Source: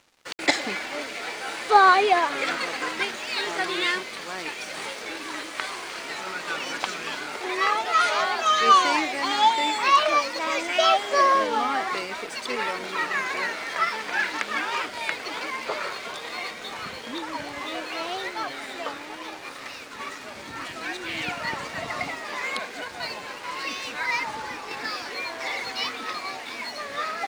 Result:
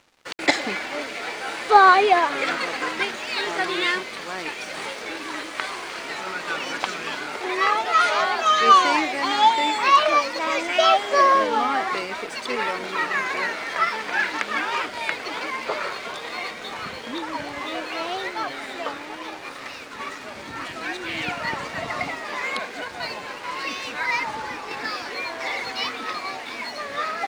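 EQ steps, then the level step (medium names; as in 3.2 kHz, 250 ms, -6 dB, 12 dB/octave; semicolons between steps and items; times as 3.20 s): treble shelf 4.3 kHz -5 dB; +3.0 dB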